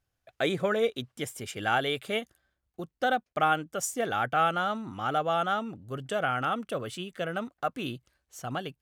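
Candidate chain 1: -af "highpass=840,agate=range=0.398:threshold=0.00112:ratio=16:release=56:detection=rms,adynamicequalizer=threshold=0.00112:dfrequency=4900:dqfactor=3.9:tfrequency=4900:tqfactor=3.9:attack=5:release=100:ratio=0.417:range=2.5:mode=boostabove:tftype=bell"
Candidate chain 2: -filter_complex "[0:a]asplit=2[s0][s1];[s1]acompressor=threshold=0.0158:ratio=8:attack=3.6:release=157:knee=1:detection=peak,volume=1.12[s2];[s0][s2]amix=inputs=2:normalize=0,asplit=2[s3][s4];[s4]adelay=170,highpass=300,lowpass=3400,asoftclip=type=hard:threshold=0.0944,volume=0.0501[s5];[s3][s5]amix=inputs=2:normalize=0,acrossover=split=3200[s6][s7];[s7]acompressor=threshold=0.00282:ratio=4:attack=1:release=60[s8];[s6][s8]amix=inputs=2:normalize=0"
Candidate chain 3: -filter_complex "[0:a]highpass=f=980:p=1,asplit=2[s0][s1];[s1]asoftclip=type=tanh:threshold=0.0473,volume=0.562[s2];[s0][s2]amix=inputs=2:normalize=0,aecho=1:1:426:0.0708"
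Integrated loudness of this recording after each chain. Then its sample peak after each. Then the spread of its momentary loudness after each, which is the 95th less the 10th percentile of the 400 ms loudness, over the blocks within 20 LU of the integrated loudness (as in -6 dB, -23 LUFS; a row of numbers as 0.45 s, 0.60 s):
-32.5 LUFS, -28.5 LUFS, -30.5 LUFS; -15.5 dBFS, -11.5 dBFS, -13.5 dBFS; 12 LU, 10 LU, 11 LU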